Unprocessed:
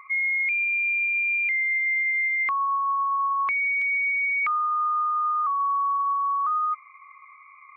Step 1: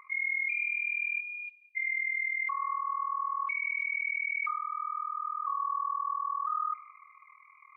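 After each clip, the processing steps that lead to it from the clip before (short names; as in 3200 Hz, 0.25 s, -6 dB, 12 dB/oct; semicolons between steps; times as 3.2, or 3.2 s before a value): AM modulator 40 Hz, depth 80%; Schroeder reverb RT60 1.6 s, combs from 31 ms, DRR 13.5 dB; spectral delete 1.2–1.76, 790–2400 Hz; gain -4 dB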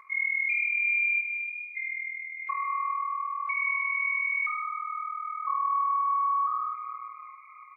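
comb 4.6 ms, depth 62%; darkening echo 0.89 s, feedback 53%, low-pass 2300 Hz, level -20 dB; plate-style reverb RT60 2.4 s, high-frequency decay 0.85×, DRR 3 dB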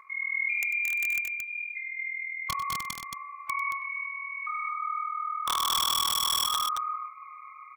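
dynamic EQ 2200 Hz, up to -5 dB, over -39 dBFS, Q 6.3; wrapped overs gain 22.5 dB; on a send: loudspeakers at several distances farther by 33 m -12 dB, 77 m -4 dB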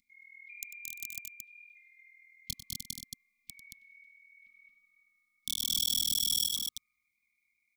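elliptic band-stop 250–3700 Hz, stop band 60 dB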